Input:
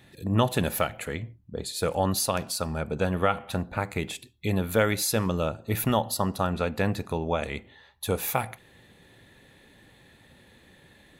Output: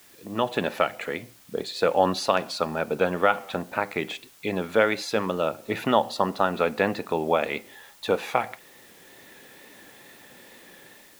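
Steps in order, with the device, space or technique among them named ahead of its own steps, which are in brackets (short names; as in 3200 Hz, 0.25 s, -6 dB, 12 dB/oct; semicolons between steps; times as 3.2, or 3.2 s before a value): dictaphone (BPF 280–3600 Hz; AGC gain up to 11 dB; wow and flutter; white noise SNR 27 dB); gain -3.5 dB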